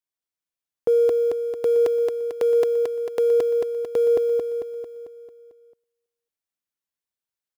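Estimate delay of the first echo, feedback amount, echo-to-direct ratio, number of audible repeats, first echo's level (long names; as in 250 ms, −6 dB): 223 ms, 54%, −2.0 dB, 6, −3.5 dB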